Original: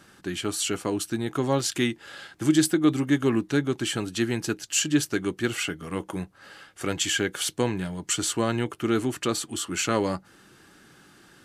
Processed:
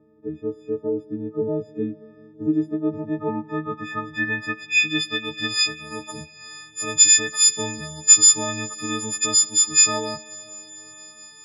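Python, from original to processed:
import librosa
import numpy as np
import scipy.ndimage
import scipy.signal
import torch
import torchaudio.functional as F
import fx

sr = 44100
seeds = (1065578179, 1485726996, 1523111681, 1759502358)

y = fx.freq_snap(x, sr, grid_st=6)
y = fx.filter_sweep_lowpass(y, sr, from_hz=420.0, to_hz=6500.0, start_s=2.44, end_s=5.94, q=3.5)
y = fx.rev_freeverb(y, sr, rt60_s=4.8, hf_ratio=1.0, predelay_ms=30, drr_db=18.5)
y = y * librosa.db_to_amplitude(-5.0)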